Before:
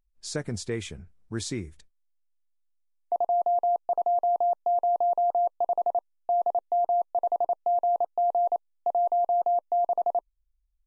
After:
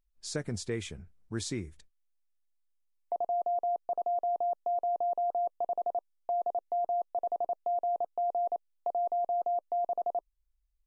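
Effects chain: dynamic bell 910 Hz, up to -7 dB, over -40 dBFS, Q 2; trim -3 dB

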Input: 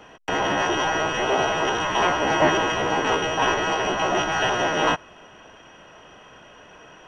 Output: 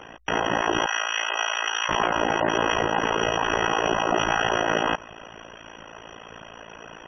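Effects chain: spectral gate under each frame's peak -20 dB strong; 0.86–1.89 s: Bessel high-pass 1.9 kHz, order 2; peak limiter -19.5 dBFS, peak gain reduction 11 dB; AM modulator 56 Hz, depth 95%; trim +8.5 dB

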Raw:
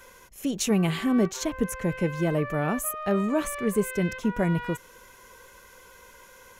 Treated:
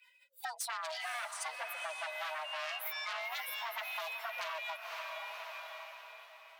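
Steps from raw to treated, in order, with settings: expander on every frequency bin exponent 2; treble shelf 4.2 kHz -6.5 dB; wavefolder -28.5 dBFS; high-pass 77 Hz 12 dB/octave; saturation -32 dBFS, distortion -15 dB; formant shift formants +5 st; echo that smears into a reverb 536 ms, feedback 41%, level -9.5 dB; compression 5:1, threshold -49 dBFS, peak gain reduction 14 dB; frequency shift +470 Hz; peaking EQ 190 Hz -14.5 dB 2.1 oct; trim +11 dB

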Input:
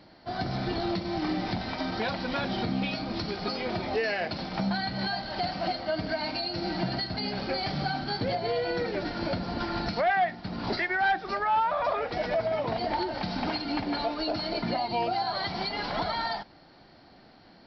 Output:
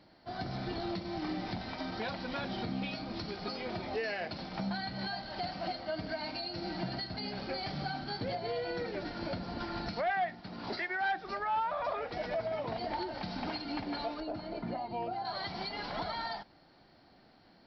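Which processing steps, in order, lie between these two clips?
10.41–11.18 s: bass shelf 120 Hz -10 dB; 14.20–15.25 s: low-pass 1.1 kHz 6 dB/octave; trim -7 dB

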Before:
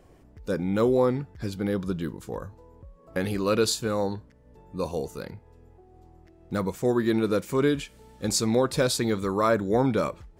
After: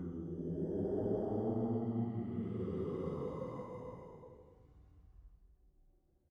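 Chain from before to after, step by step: Doppler pass-by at 7.24 s, 52 m/s, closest 8 m; Paulstretch 7.1×, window 0.25 s, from 8.50 s; tilt shelf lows +7.5 dB; trim -1.5 dB

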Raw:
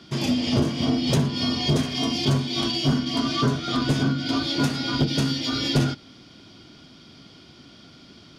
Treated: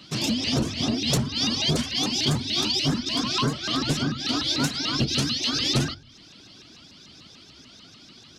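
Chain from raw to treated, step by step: peaking EQ 6.6 kHz +8.5 dB 2.8 oct; reverb removal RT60 0.51 s; on a send at -20.5 dB: resonant low shelf 120 Hz +12.5 dB, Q 3 + reverberation RT60 0.55 s, pre-delay 32 ms; on the sum: vibrato with a chosen wave saw up 6.8 Hz, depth 250 cents; trim -3 dB

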